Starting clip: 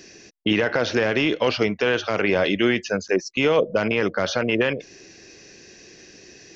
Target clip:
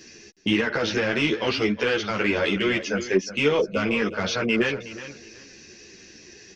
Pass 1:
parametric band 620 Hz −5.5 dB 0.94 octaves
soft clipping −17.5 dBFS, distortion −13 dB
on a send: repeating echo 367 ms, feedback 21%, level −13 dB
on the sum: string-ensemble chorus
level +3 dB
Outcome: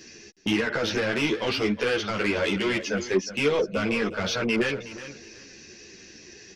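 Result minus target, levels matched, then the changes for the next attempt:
soft clipping: distortion +12 dB
change: soft clipping −9 dBFS, distortion −25 dB

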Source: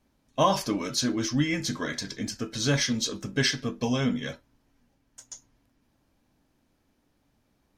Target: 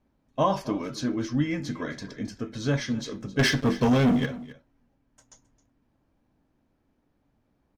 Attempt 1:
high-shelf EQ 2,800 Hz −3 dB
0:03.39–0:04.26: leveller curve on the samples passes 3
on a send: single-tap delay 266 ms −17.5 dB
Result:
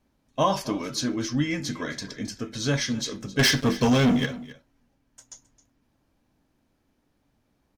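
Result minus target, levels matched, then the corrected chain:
4,000 Hz band +4.5 dB
high-shelf EQ 2,800 Hz −14.5 dB
0:03.39–0:04.26: leveller curve on the samples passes 3
on a send: single-tap delay 266 ms −17.5 dB

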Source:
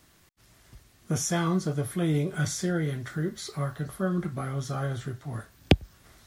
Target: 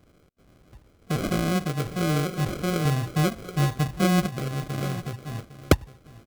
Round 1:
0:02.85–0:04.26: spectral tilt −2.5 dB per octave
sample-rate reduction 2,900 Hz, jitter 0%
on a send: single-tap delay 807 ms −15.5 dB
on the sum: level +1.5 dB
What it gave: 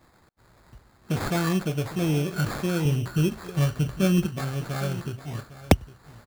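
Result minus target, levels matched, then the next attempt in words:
sample-rate reduction: distortion −8 dB
0:02.85–0:04.26: spectral tilt −2.5 dB per octave
sample-rate reduction 910 Hz, jitter 0%
on a send: single-tap delay 807 ms −15.5 dB
on the sum: level +1.5 dB

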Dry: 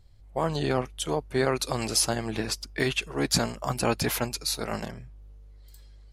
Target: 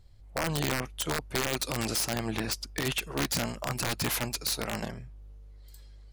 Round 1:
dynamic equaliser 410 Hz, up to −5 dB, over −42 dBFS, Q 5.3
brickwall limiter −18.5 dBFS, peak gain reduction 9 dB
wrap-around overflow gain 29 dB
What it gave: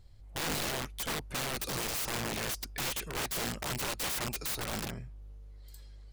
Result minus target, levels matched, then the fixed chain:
wrap-around overflow: distortion +16 dB
dynamic equaliser 410 Hz, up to −5 dB, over −42 dBFS, Q 5.3
brickwall limiter −18.5 dBFS, peak gain reduction 9 dB
wrap-around overflow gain 20.5 dB

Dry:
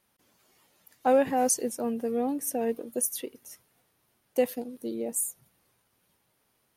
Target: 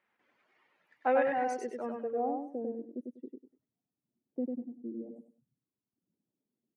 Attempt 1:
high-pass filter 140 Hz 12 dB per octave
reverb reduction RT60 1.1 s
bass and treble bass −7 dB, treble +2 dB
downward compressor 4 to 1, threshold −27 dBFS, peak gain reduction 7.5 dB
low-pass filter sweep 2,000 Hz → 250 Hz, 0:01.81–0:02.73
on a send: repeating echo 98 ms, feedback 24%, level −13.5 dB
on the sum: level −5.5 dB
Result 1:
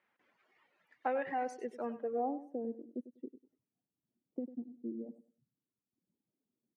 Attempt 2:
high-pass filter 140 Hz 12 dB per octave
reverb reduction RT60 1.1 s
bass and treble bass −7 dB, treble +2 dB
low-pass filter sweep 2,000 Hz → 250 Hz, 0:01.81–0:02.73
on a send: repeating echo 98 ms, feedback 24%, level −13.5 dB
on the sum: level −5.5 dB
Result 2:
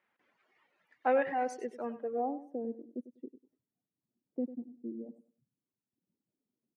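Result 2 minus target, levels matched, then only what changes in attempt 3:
echo-to-direct −10 dB
change: repeating echo 98 ms, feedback 24%, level −3.5 dB

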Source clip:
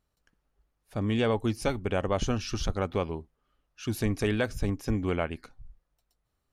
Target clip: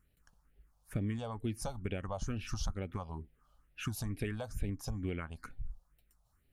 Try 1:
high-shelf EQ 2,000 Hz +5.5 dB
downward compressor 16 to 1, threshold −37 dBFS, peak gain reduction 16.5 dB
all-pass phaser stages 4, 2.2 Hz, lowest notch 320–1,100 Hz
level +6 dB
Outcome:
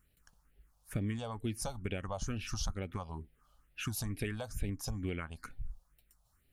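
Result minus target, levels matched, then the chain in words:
4,000 Hz band +3.0 dB
downward compressor 16 to 1, threshold −37 dBFS, peak gain reduction 16 dB
all-pass phaser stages 4, 2.2 Hz, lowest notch 320–1,100 Hz
level +6 dB

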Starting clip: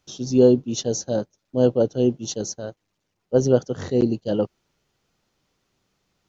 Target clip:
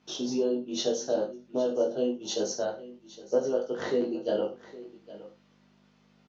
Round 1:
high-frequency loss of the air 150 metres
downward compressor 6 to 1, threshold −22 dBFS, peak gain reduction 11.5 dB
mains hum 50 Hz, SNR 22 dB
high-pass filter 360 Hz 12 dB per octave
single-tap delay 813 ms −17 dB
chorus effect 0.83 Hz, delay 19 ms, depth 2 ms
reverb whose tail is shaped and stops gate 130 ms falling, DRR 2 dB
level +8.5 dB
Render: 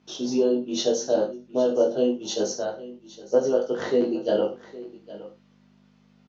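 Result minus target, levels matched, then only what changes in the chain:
downward compressor: peak gain reduction −6 dB
change: downward compressor 6 to 1, threshold −29 dBFS, peak gain reduction 17.5 dB

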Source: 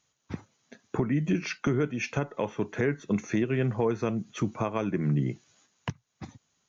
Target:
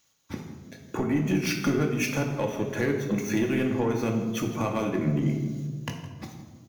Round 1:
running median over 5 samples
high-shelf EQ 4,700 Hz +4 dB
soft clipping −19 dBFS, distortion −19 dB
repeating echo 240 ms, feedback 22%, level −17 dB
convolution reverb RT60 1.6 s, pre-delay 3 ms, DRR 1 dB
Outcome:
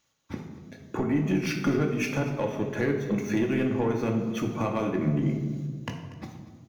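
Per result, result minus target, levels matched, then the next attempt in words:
echo 77 ms late; 8,000 Hz band −6.0 dB
running median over 5 samples
high-shelf EQ 4,700 Hz +4 dB
soft clipping −19 dBFS, distortion −19 dB
repeating echo 163 ms, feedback 22%, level −17 dB
convolution reverb RT60 1.6 s, pre-delay 3 ms, DRR 1 dB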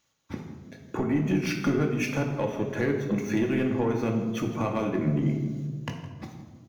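8,000 Hz band −6.0 dB
running median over 5 samples
high-shelf EQ 4,700 Hz +14.5 dB
soft clipping −19 dBFS, distortion −18 dB
repeating echo 163 ms, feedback 22%, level −17 dB
convolution reverb RT60 1.6 s, pre-delay 3 ms, DRR 1 dB

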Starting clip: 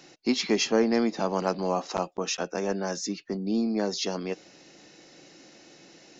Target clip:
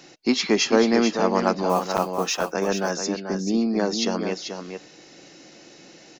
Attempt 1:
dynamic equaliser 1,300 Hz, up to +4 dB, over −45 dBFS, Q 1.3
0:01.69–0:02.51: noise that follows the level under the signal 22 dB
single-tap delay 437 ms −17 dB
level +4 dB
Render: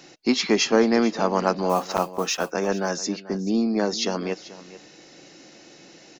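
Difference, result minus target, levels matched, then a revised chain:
echo-to-direct −9.5 dB
dynamic equaliser 1,300 Hz, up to +4 dB, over −45 dBFS, Q 1.3
0:01.69–0:02.51: noise that follows the level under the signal 22 dB
single-tap delay 437 ms −7.5 dB
level +4 dB

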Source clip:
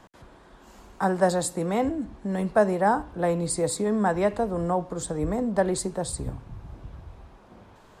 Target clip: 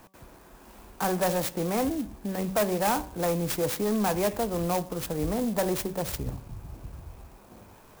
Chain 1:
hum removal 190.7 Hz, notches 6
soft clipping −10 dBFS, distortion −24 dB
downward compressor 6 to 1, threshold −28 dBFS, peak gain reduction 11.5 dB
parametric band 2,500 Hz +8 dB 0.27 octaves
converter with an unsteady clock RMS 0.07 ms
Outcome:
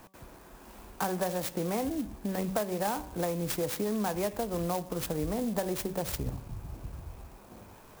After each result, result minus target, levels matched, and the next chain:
downward compressor: peak gain reduction +11.5 dB; soft clipping: distortion −12 dB
hum removal 190.7 Hz, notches 6
soft clipping −10 dBFS, distortion −24 dB
parametric band 2,500 Hz +8 dB 0.27 octaves
converter with an unsteady clock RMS 0.07 ms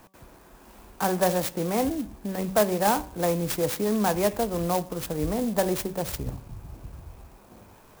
soft clipping: distortion −12 dB
hum removal 190.7 Hz, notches 6
soft clipping −19.5 dBFS, distortion −12 dB
parametric band 2,500 Hz +8 dB 0.27 octaves
converter with an unsteady clock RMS 0.07 ms

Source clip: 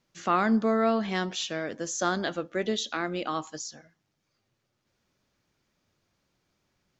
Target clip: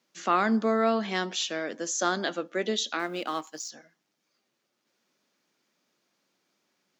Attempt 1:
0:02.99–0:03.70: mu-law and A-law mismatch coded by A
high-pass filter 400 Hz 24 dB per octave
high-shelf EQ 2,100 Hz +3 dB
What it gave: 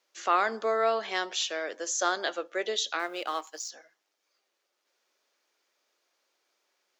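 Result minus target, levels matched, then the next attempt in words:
250 Hz band −11.0 dB
0:02.99–0:03.70: mu-law and A-law mismatch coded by A
high-pass filter 200 Hz 24 dB per octave
high-shelf EQ 2,100 Hz +3 dB

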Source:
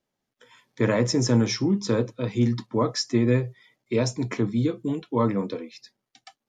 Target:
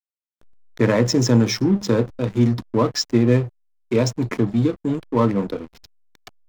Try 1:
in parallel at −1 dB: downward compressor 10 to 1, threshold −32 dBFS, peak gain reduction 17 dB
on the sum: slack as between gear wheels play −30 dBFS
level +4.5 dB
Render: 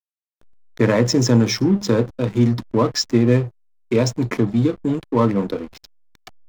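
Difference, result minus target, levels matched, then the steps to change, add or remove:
downward compressor: peak gain reduction −10 dB
change: downward compressor 10 to 1, threshold −43 dBFS, peak gain reduction 27 dB

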